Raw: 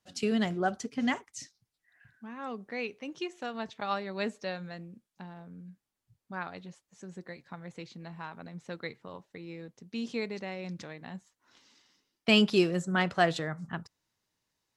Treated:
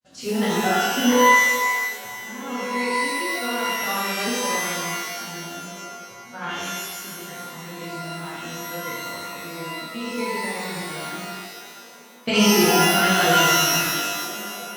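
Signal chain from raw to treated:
tape wow and flutter 24 cents
granular cloud, grains 13 per second, spray 16 ms, pitch spread up and down by 0 semitones
on a send: echo through a band-pass that steps 331 ms, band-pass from 2,600 Hz, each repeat −0.7 octaves, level −9 dB
on the sum: reverb with rising layers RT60 1.4 s, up +12 semitones, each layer −2 dB, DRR −9 dB

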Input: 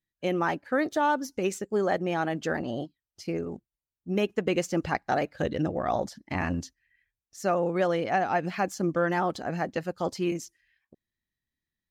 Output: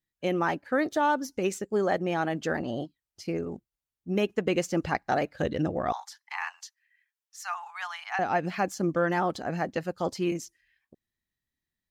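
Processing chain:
0:05.92–0:08.19: Butterworth high-pass 820 Hz 72 dB per octave

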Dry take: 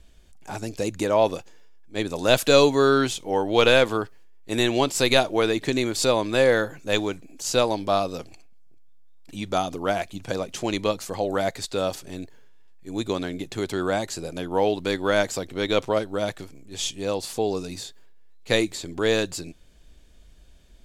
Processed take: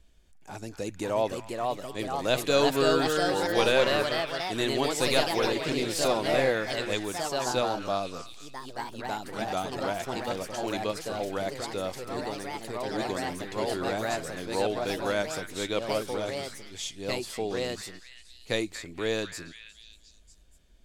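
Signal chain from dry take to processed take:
delay with pitch and tempo change per echo 602 ms, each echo +2 semitones, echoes 3
on a send: echo through a band-pass that steps 238 ms, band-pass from 1,600 Hz, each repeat 0.7 octaves, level −7 dB
on the sum: level −7.5 dB

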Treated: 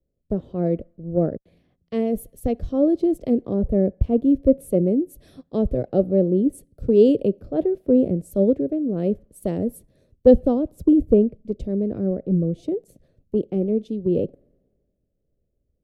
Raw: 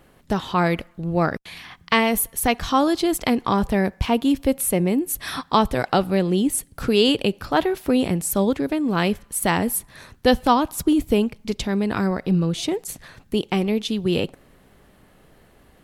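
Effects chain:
drawn EQ curve 150 Hz 0 dB, 580 Hz +4 dB, 900 Hz −24 dB
multiband upward and downward expander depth 70%
level −1 dB

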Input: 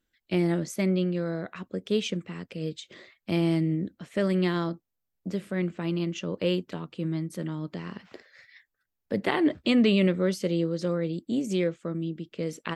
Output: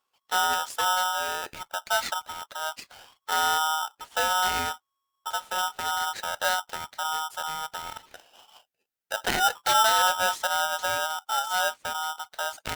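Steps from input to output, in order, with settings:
0:08.08–0:09.31: high-pass filter 310 Hz
ring modulator with a square carrier 1,100 Hz

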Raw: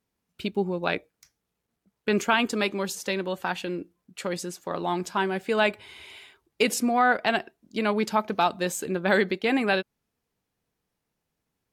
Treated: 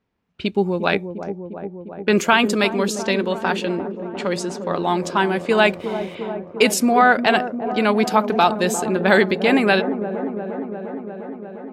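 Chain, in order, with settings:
low-pass that shuts in the quiet parts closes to 2,900 Hz, open at −23 dBFS
delay with a low-pass on its return 352 ms, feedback 76%, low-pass 720 Hz, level −8 dB
0:05.66–0:06.15: slack as between gear wheels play −46 dBFS
level +7 dB

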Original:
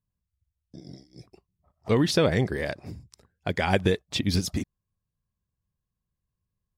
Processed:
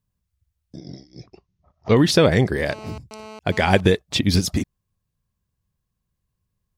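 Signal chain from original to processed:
0:00.78–0:01.97: Butterworth low-pass 6,700 Hz 96 dB per octave
0:02.70–0:03.80: phone interference −45 dBFS
level +6.5 dB

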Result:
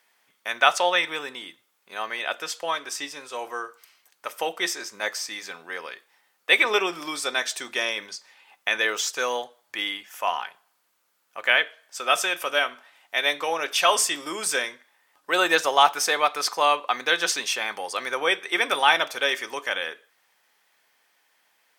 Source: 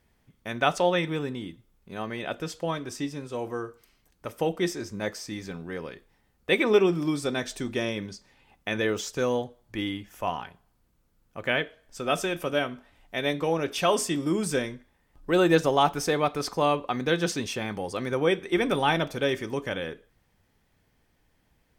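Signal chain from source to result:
high-pass filter 920 Hz 12 dB per octave
level +8.5 dB

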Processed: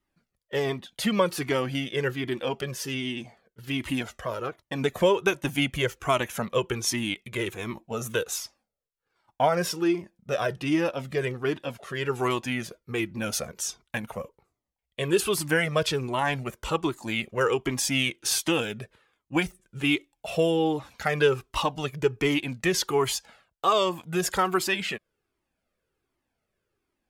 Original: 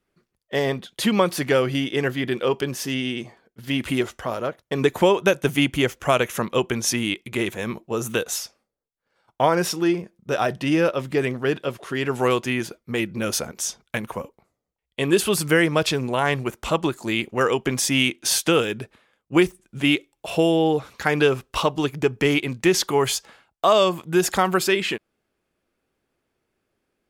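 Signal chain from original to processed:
flanger whose copies keep moving one way falling 1.3 Hz

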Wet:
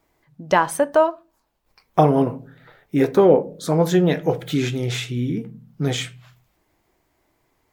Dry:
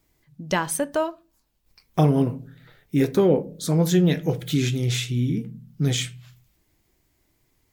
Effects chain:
parametric band 830 Hz +13.5 dB 2.8 octaves
level −4 dB

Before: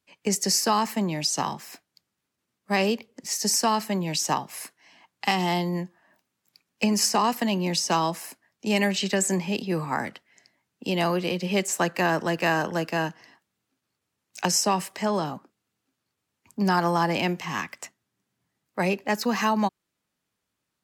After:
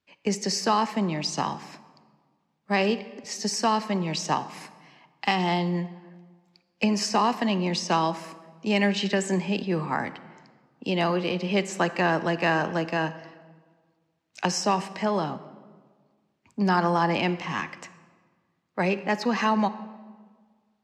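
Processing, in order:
low-pass filter 4,700 Hz 12 dB per octave
on a send: convolution reverb RT60 1.6 s, pre-delay 38 ms, DRR 14 dB

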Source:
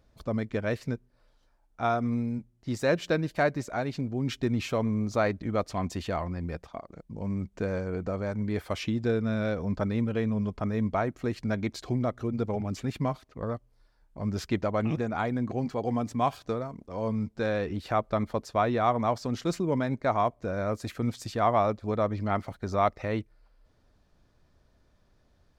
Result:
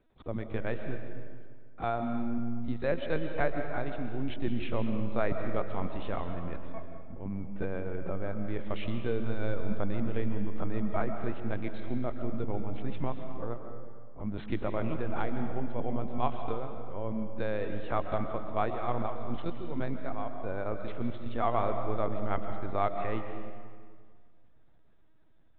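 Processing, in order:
0:18.26–0:20.65: square-wave tremolo 3.4 Hz → 1.4 Hz, depth 60%, duty 45%
linear-prediction vocoder at 8 kHz pitch kept
convolution reverb RT60 1.9 s, pre-delay 95 ms, DRR 6 dB
level −5 dB

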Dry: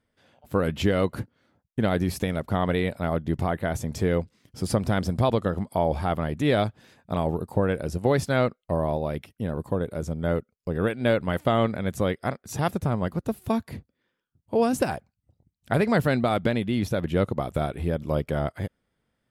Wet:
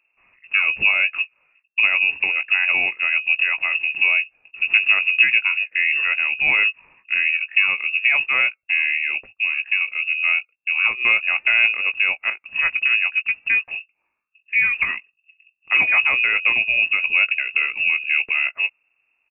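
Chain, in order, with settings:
low-shelf EQ 200 Hz +11 dB
double-tracking delay 18 ms −10 dB
voice inversion scrambler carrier 2,700 Hz

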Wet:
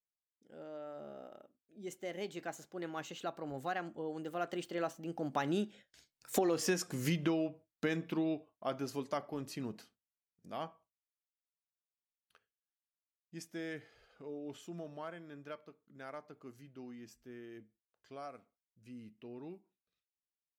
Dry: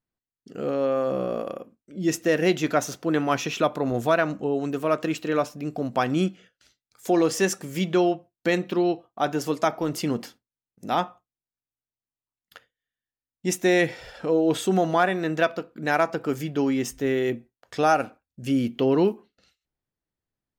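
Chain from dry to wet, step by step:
source passing by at 0:06.58, 35 m/s, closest 8.4 metres
downward compressor 10 to 1, threshold −35 dBFS, peak gain reduction 18.5 dB
level +6 dB

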